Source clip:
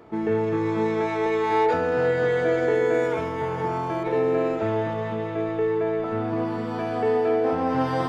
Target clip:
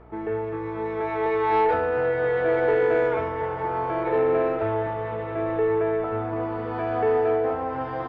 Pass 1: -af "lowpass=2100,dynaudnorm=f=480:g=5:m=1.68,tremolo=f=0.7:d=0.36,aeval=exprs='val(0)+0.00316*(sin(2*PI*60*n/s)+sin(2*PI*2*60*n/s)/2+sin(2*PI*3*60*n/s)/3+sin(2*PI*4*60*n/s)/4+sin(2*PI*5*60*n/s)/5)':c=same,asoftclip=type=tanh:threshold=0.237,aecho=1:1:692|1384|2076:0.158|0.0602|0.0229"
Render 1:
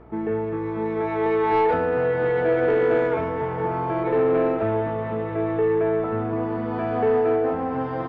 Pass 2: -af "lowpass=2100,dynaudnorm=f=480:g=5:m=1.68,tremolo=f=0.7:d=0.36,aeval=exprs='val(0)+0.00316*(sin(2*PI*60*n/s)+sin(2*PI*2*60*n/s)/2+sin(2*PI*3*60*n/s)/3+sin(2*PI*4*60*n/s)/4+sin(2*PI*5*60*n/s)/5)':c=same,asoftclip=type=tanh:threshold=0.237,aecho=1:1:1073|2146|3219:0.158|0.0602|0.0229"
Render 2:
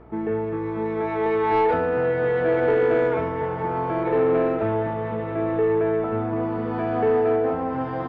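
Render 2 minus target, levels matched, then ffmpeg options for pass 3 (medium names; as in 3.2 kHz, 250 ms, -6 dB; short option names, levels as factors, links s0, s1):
250 Hz band +3.5 dB
-af "lowpass=2100,equalizer=f=200:w=1.5:g=-13.5,dynaudnorm=f=480:g=5:m=1.68,tremolo=f=0.7:d=0.36,aeval=exprs='val(0)+0.00316*(sin(2*PI*60*n/s)+sin(2*PI*2*60*n/s)/2+sin(2*PI*3*60*n/s)/3+sin(2*PI*4*60*n/s)/4+sin(2*PI*5*60*n/s)/5)':c=same,asoftclip=type=tanh:threshold=0.237,aecho=1:1:1073|2146|3219:0.158|0.0602|0.0229"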